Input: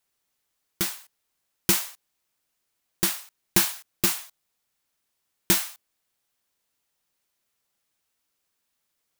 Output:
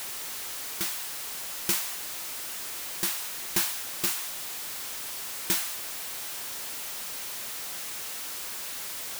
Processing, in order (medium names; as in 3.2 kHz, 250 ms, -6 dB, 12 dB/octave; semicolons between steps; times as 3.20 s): jump at every zero crossing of -23 dBFS; bass shelf 280 Hz -7.5 dB; trim -7 dB